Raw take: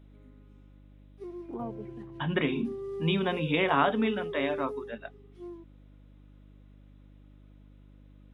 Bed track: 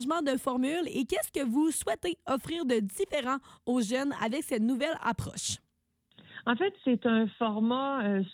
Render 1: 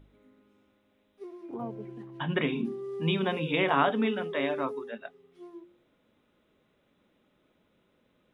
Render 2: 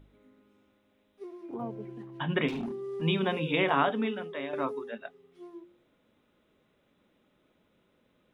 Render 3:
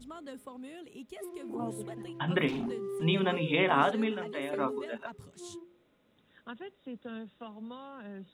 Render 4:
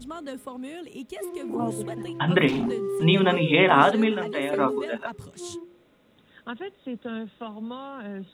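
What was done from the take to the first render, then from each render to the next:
de-hum 50 Hz, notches 7
2.48–3.02 s: hard clipper -31.5 dBFS; 3.60–4.53 s: fade out, to -8.5 dB
add bed track -16 dB
trim +8.5 dB

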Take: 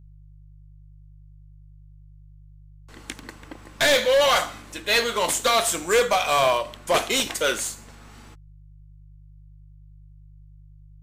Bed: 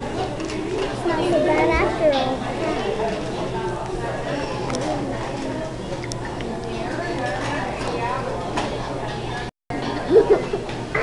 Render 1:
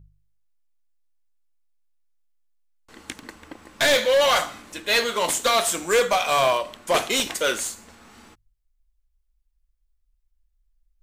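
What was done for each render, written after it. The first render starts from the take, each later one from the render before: de-hum 50 Hz, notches 3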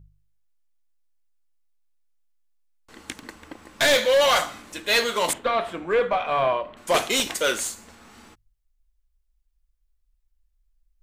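5.33–6.77 s: distance through air 500 m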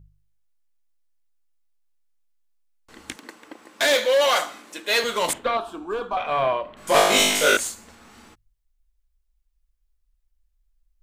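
3.16–5.04 s: Chebyshev high-pass 310 Hz; 5.57–6.17 s: static phaser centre 540 Hz, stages 6; 6.76–7.57 s: flutter echo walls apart 3.4 m, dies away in 1 s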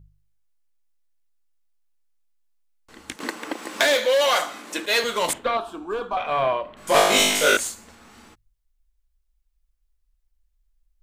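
3.20–4.86 s: three bands compressed up and down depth 70%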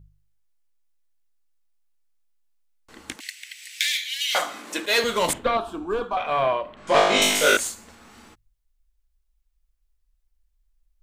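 3.20–4.35 s: steep high-pass 2 kHz 48 dB/octave; 4.98–6.04 s: bass shelf 230 Hz +9.5 dB; 6.76–7.22 s: distance through air 110 m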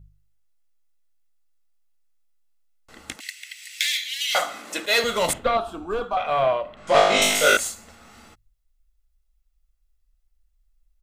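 comb 1.5 ms, depth 34%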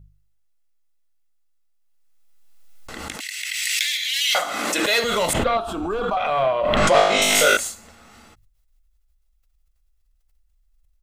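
swell ahead of each attack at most 23 dB/s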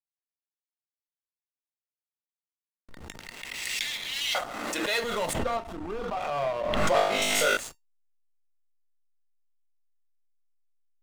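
hysteresis with a dead band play -23 dBFS; feedback comb 920 Hz, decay 0.16 s, harmonics all, mix 60%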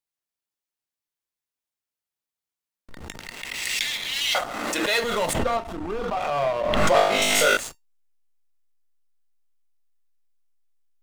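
trim +5 dB

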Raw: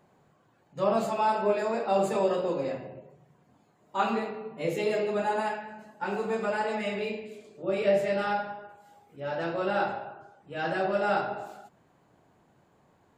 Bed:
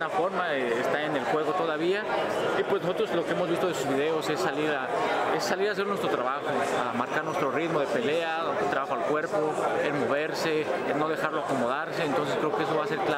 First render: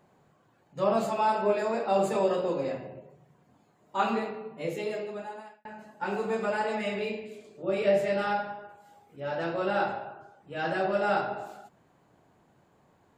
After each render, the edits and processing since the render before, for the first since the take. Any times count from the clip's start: 4.27–5.65 s: fade out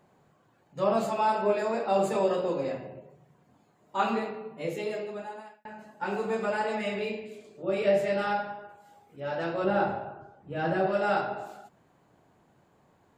9.64–10.87 s: tilt EQ -2.5 dB/octave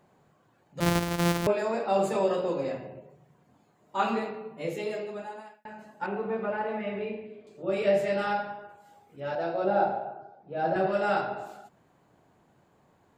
0.80–1.47 s: sorted samples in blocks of 256 samples; 6.06–7.47 s: distance through air 470 m; 9.35–10.76 s: cabinet simulation 200–5300 Hz, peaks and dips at 280 Hz -5 dB, 720 Hz +8 dB, 1.1 kHz -8 dB, 1.9 kHz -8 dB, 3 kHz -9 dB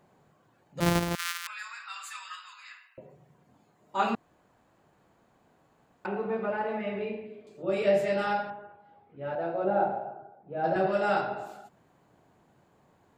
1.15–2.98 s: steep high-pass 1.2 kHz 48 dB/octave; 4.15–6.05 s: room tone; 8.50–10.64 s: distance through air 400 m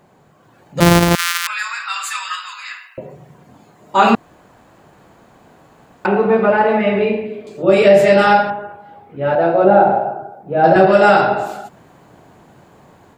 level rider gain up to 6.5 dB; loudness maximiser +11 dB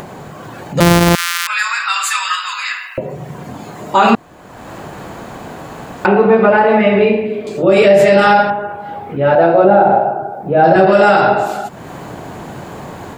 in parallel at 0 dB: upward compressor, threshold -14 dBFS; on the sum: loudness maximiser -1 dB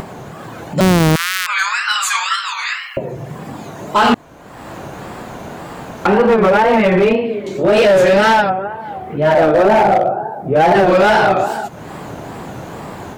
wow and flutter 150 cents; overload inside the chain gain 7 dB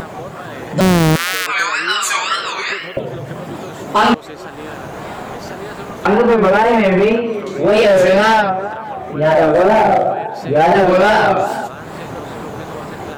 add bed -4.5 dB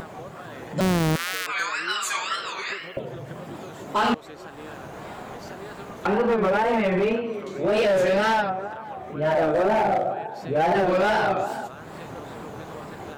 trim -10 dB

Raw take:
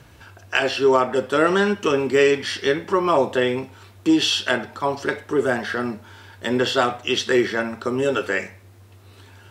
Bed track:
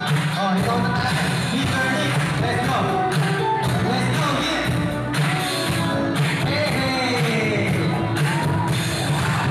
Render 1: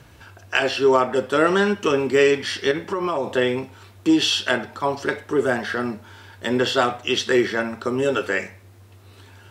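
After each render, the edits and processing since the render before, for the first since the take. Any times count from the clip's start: 2.71–3.35 s: compression, threshold -19 dBFS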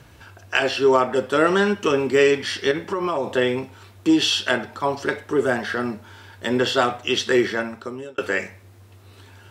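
7.49–8.18 s: fade out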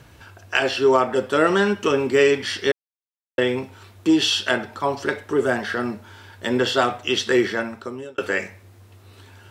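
2.72–3.38 s: mute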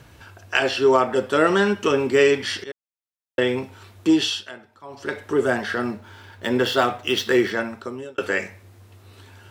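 2.64–3.60 s: fade in equal-power, from -20 dB; 4.13–5.26 s: dip -18 dB, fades 0.38 s; 5.91–7.51 s: median filter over 5 samples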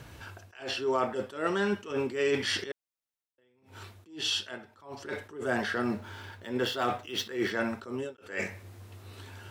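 reverse; compression 4:1, threshold -27 dBFS, peak gain reduction 13 dB; reverse; attacks held to a fixed rise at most 140 dB/s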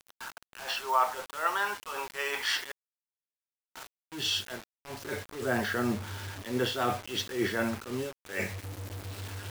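high-pass sweep 930 Hz -> 82 Hz, 3.73–4.32 s; bit crusher 7-bit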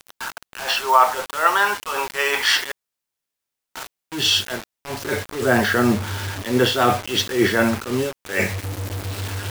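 trim +12 dB; peak limiter -3 dBFS, peak gain reduction 1.5 dB

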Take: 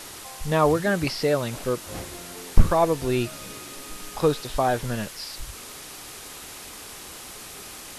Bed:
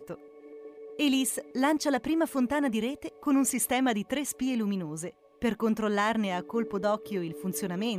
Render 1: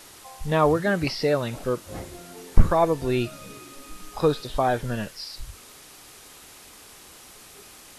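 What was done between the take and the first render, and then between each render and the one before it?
noise print and reduce 7 dB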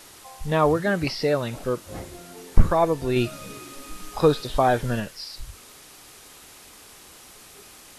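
3.16–5.00 s: gain +3 dB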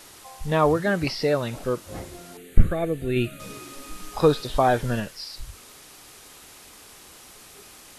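2.37–3.40 s: static phaser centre 2.3 kHz, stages 4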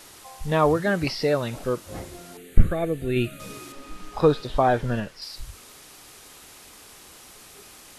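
3.72–5.22 s: low-pass 2.9 kHz 6 dB/octave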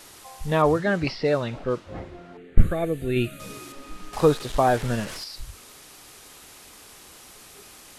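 0.62–2.71 s: level-controlled noise filter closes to 1.8 kHz, open at -14 dBFS; 4.13–5.24 s: one-bit delta coder 64 kbps, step -30 dBFS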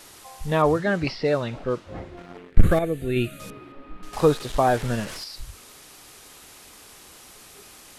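2.17–2.79 s: waveshaping leveller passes 2; 3.50–4.03 s: distance through air 490 m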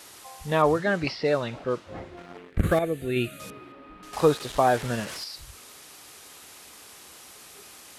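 high-pass 51 Hz; bass shelf 310 Hz -5 dB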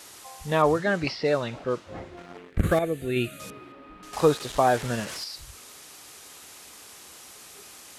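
peaking EQ 6.8 kHz +2.5 dB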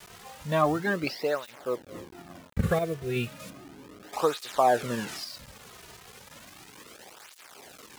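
send-on-delta sampling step -39 dBFS; cancelling through-zero flanger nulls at 0.34 Hz, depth 3.8 ms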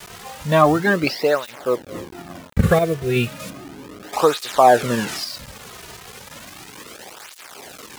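trim +10 dB; peak limiter -1 dBFS, peak gain reduction 1.5 dB

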